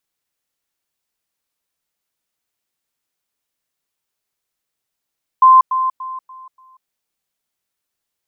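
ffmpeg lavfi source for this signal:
ffmpeg -f lavfi -i "aevalsrc='pow(10,(-4.5-10*floor(t/0.29))/20)*sin(2*PI*1040*t)*clip(min(mod(t,0.29),0.19-mod(t,0.29))/0.005,0,1)':duration=1.45:sample_rate=44100" out.wav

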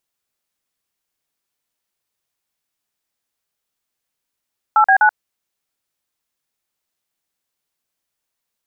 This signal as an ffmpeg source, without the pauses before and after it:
ffmpeg -f lavfi -i "aevalsrc='0.282*clip(min(mod(t,0.125),0.082-mod(t,0.125))/0.002,0,1)*(eq(floor(t/0.125),0)*(sin(2*PI*852*mod(t,0.125))+sin(2*PI*1336*mod(t,0.125)))+eq(floor(t/0.125),1)*(sin(2*PI*770*mod(t,0.125))+sin(2*PI*1633*mod(t,0.125)))+eq(floor(t/0.125),2)*(sin(2*PI*852*mod(t,0.125))+sin(2*PI*1477*mod(t,0.125))))':duration=0.375:sample_rate=44100" out.wav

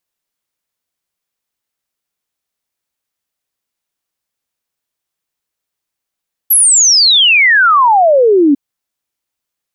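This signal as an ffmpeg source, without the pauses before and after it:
ffmpeg -f lavfi -i "aevalsrc='0.562*clip(min(t,2.05-t)/0.01,0,1)*sin(2*PI*12000*2.05/log(270/12000)*(exp(log(270/12000)*t/2.05)-1))':duration=2.05:sample_rate=44100" out.wav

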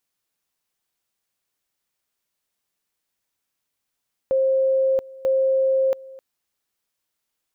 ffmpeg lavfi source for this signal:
ffmpeg -f lavfi -i "aevalsrc='pow(10,(-16-21.5*gte(mod(t,0.94),0.68))/20)*sin(2*PI*531*t)':duration=1.88:sample_rate=44100" out.wav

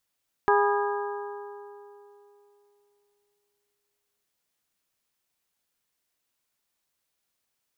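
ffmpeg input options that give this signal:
ffmpeg -f lavfi -i "aevalsrc='0.0944*pow(10,-3*t/3.2)*sin(2*PI*409*t)+0.0794*pow(10,-3*t/2.599)*sin(2*PI*818*t)+0.0668*pow(10,-3*t/2.461)*sin(2*PI*981.6*t)+0.0562*pow(10,-3*t/2.302)*sin(2*PI*1227*t)+0.0473*pow(10,-3*t/2.111)*sin(2*PI*1636*t)':duration=3.76:sample_rate=44100" out.wav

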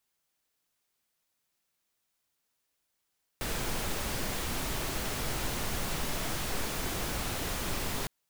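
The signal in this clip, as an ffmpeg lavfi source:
ffmpeg -f lavfi -i "anoisesrc=color=pink:amplitude=0.115:duration=4.66:sample_rate=44100:seed=1" out.wav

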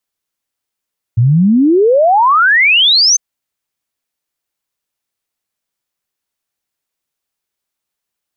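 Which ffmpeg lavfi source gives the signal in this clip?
ffmpeg -f lavfi -i "aevalsrc='0.501*clip(min(t,2-t)/0.01,0,1)*sin(2*PI*110*2/log(6400/110)*(exp(log(6400/110)*t/2)-1))':duration=2:sample_rate=44100" out.wav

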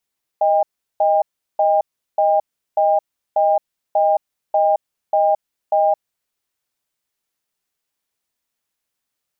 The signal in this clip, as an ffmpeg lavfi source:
ffmpeg -f lavfi -i "aevalsrc='0.178*(sin(2*PI*624*t)+sin(2*PI*802*t))*clip(min(mod(t,0.59),0.22-mod(t,0.59))/0.005,0,1)':duration=5.74:sample_rate=44100" out.wav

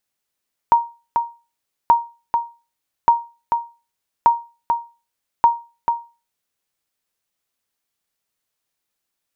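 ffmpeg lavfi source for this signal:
ffmpeg -f lavfi -i "aevalsrc='0.596*(sin(2*PI*937*mod(t,1.18))*exp(-6.91*mod(t,1.18)/0.31)+0.501*sin(2*PI*937*max(mod(t,1.18)-0.44,0))*exp(-6.91*max(mod(t,1.18)-0.44,0)/0.31))':duration=5.9:sample_rate=44100" out.wav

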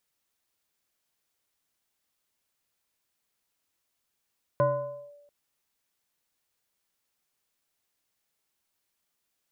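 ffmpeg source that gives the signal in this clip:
ffmpeg -f lavfi -i "aevalsrc='0.126*pow(10,-3*t/1.04)*sin(2*PI*579*t+0.96*clip(1-t/0.52,0,1)*sin(2*PI*0.77*579*t))':duration=0.69:sample_rate=44100" out.wav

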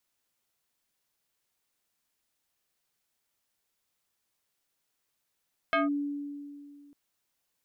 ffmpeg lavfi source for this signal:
ffmpeg -f lavfi -i "aevalsrc='0.0841*pow(10,-3*t/2.3)*sin(2*PI*287*t+2.4*clip(1-t/0.16,0,1)*sin(2*PI*3.31*287*t))':duration=1.2:sample_rate=44100" out.wav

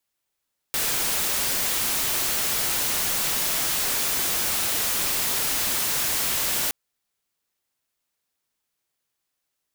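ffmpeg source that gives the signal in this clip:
ffmpeg -f lavfi -i "anoisesrc=color=white:amplitude=0.103:duration=5.97:sample_rate=44100:seed=1" out.wav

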